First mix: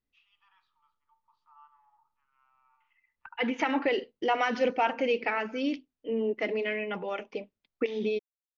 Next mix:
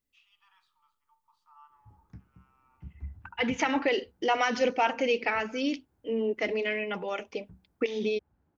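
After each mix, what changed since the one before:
background: unmuted
master: remove high-frequency loss of the air 160 metres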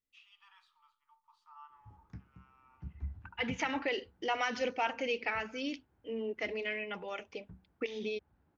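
second voice −9.0 dB
master: add parametric band 2,500 Hz +4 dB 2.6 octaves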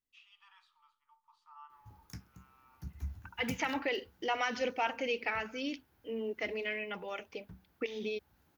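background: remove head-to-tape spacing loss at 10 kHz 42 dB

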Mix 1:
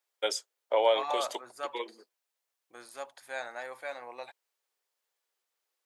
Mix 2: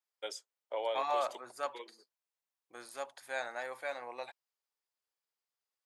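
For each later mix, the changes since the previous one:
first voice −11.0 dB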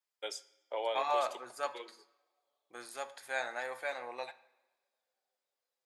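reverb: on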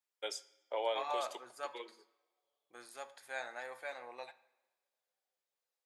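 second voice −6.0 dB

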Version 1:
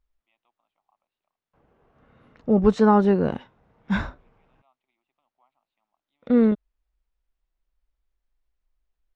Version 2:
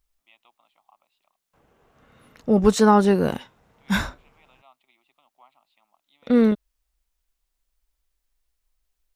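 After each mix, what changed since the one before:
first voice +9.0 dB
master: remove head-to-tape spacing loss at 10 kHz 27 dB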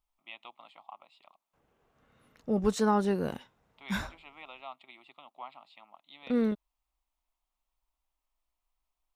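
first voice +11.0 dB
second voice −10.5 dB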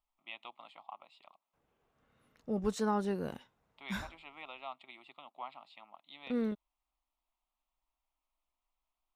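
second voice −6.0 dB

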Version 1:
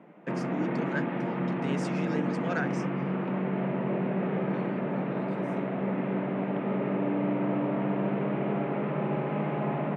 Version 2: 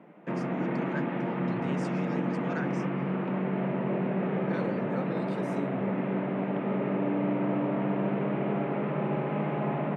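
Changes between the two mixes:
first voice −5.5 dB
second voice +9.5 dB

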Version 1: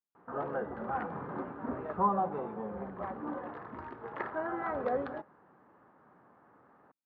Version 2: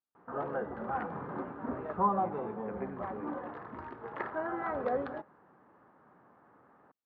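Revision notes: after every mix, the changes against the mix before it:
second voice +11.5 dB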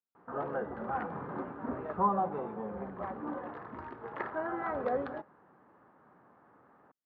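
second voice −9.5 dB

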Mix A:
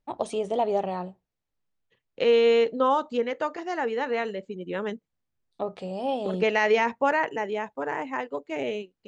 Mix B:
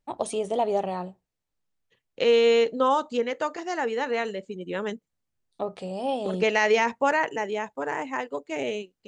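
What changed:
second voice: add high-shelf EQ 5,800 Hz +6.5 dB
master: remove high-frequency loss of the air 63 metres

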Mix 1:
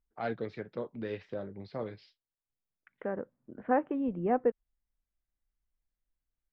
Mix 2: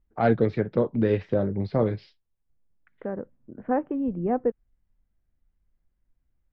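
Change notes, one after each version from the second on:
first voice +11.0 dB
master: add spectral tilt −2.5 dB per octave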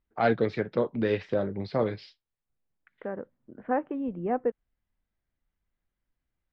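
master: add spectral tilt +2.5 dB per octave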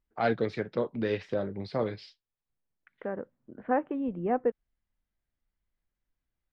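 first voice −3.5 dB
master: remove high-frequency loss of the air 93 metres

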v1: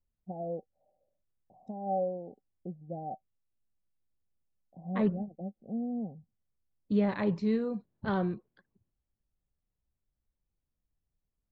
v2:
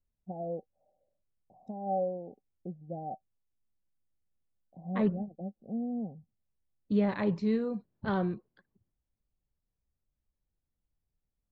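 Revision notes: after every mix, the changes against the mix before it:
nothing changed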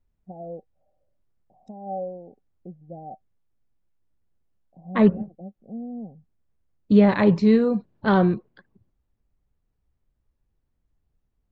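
second voice +12.0 dB

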